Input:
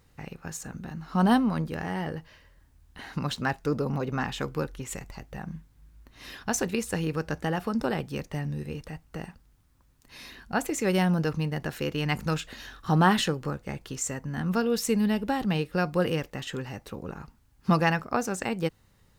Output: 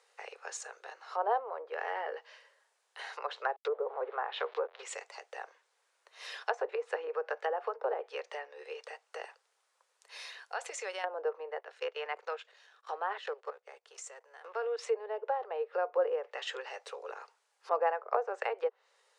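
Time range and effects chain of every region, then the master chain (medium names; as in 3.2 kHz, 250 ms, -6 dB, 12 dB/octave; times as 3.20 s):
3.56–4.83 s: send-on-delta sampling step -41.5 dBFS + low-pass that closes with the level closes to 1.6 kHz, closed at -26 dBFS + peaking EQ 3.9 kHz +8.5 dB 0.7 oct
10.22–11.04 s: peaking EQ 270 Hz -6 dB 1.8 oct + compression 2.5:1, threshold -34 dBFS
11.59–14.79 s: companding laws mixed up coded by A + treble shelf 3.2 kHz -5.5 dB + level held to a coarse grid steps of 15 dB
whole clip: steep low-pass 10 kHz; low-pass that closes with the level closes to 850 Hz, closed at -23.5 dBFS; steep high-pass 430 Hz 72 dB/octave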